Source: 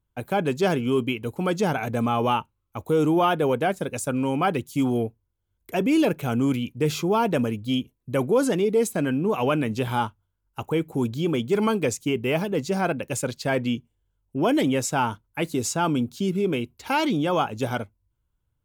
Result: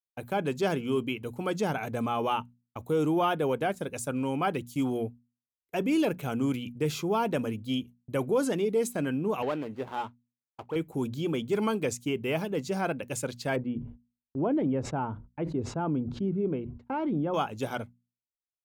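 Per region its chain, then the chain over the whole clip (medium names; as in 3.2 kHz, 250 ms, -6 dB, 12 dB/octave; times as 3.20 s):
9.42–10.76 s: median filter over 25 samples + tone controls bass -10 dB, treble -8 dB
13.56–17.34 s: Bessel low-pass 810 Hz + bass shelf 140 Hz +4.5 dB + decay stretcher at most 110 dB/s
whole clip: gate -40 dBFS, range -35 dB; hum notches 60/120/180/240 Hz; trim -5.5 dB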